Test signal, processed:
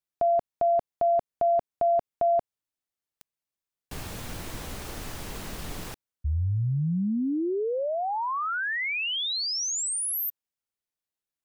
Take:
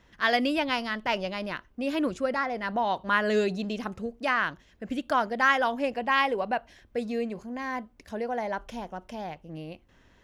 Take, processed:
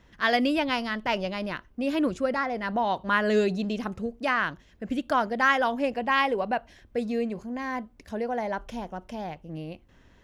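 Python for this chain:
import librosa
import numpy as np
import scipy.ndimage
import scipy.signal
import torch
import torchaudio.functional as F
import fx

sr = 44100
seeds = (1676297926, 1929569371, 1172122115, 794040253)

y = fx.low_shelf(x, sr, hz=380.0, db=4.0)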